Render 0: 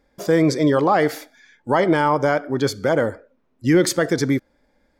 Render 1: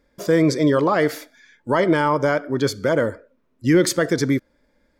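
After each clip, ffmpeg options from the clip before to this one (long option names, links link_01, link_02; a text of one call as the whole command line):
ffmpeg -i in.wav -af "bandreject=frequency=780:width=5.1" out.wav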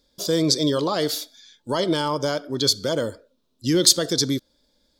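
ffmpeg -i in.wav -af "highshelf=frequency=2800:width_type=q:width=3:gain=10.5,volume=-4.5dB" out.wav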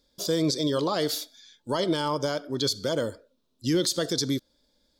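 ffmpeg -i in.wav -af "alimiter=limit=-12.5dB:level=0:latency=1:release=74,volume=-3dB" out.wav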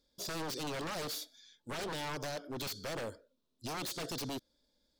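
ffmpeg -i in.wav -af "aeval=exprs='0.0473*(abs(mod(val(0)/0.0473+3,4)-2)-1)':channel_layout=same,volume=-7.5dB" out.wav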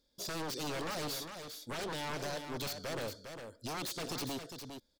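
ffmpeg -i in.wav -af "aecho=1:1:405:0.422" out.wav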